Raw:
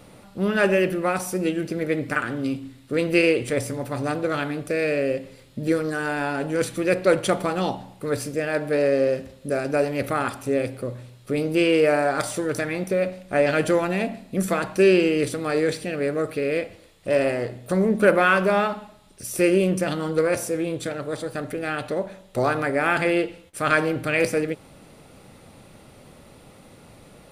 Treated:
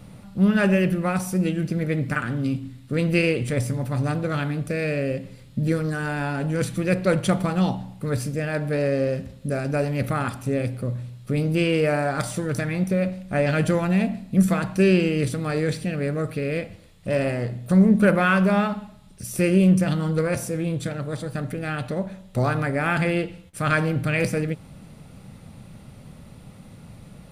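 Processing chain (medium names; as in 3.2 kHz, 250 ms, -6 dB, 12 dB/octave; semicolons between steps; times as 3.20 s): resonant low shelf 250 Hz +8.5 dB, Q 1.5; trim -2 dB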